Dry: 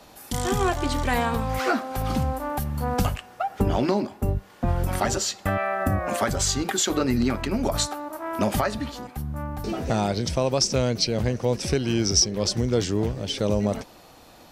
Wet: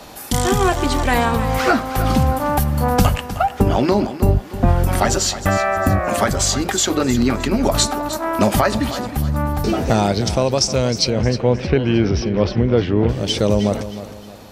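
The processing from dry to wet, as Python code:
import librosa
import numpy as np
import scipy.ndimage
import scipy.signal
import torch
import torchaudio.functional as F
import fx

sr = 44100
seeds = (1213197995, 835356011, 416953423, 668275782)

p1 = fx.lowpass(x, sr, hz=3000.0, slope=24, at=(11.1, 13.09))
p2 = fx.rider(p1, sr, range_db=4, speed_s=0.5)
p3 = p2 + fx.echo_feedback(p2, sr, ms=311, feedback_pct=37, wet_db=-13.0, dry=0)
y = F.gain(torch.from_numpy(p3), 7.5).numpy()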